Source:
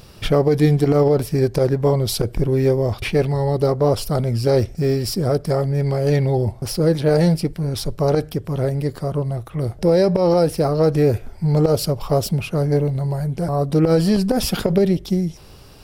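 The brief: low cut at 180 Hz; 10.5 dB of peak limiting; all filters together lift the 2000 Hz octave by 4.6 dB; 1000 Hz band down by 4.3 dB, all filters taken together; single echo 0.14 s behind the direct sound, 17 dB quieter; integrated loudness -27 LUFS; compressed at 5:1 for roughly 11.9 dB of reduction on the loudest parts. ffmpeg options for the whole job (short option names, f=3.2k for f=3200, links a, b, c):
-af "highpass=180,equalizer=f=1k:t=o:g=-8.5,equalizer=f=2k:t=o:g=8,acompressor=threshold=-27dB:ratio=5,alimiter=level_in=1.5dB:limit=-24dB:level=0:latency=1,volume=-1.5dB,aecho=1:1:140:0.141,volume=7.5dB"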